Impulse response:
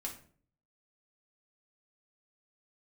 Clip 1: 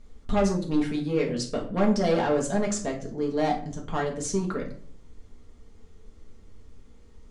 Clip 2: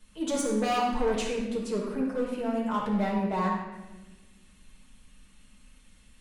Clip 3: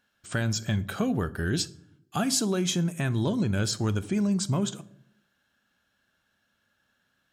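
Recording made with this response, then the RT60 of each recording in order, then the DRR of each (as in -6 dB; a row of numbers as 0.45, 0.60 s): 1; 0.50, 1.2, 0.80 s; -1.5, -5.0, 16.0 dB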